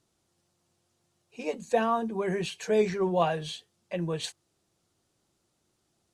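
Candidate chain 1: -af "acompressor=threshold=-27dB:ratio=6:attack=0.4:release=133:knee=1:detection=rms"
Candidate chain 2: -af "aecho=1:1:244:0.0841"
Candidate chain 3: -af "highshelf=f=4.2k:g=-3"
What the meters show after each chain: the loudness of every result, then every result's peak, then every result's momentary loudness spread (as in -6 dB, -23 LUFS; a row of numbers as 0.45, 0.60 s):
-35.0, -29.5, -29.5 LUFS; -23.0, -12.5, -12.5 dBFS; 8, 12, 12 LU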